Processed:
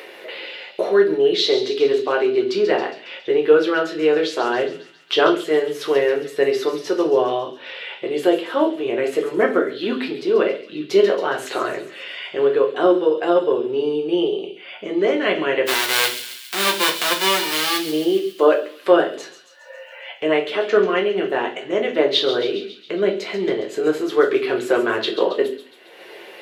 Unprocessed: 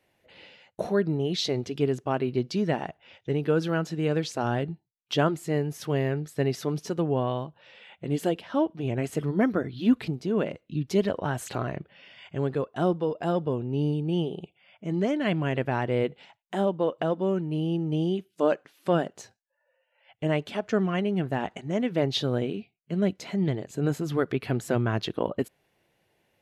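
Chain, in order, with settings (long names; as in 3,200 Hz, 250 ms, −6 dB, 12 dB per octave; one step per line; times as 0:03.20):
0:15.65–0:17.77: spectral envelope flattened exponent 0.1
flat-topped bell 2,100 Hz +9 dB 2.4 octaves
upward compression, threshold −26 dBFS
high-pass with resonance 410 Hz, resonance Q 4.5
delay with a high-pass on its return 137 ms, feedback 60%, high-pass 3,000 Hz, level −9 dB
convolution reverb RT60 0.40 s, pre-delay 5 ms, DRR 0.5 dB
level −1 dB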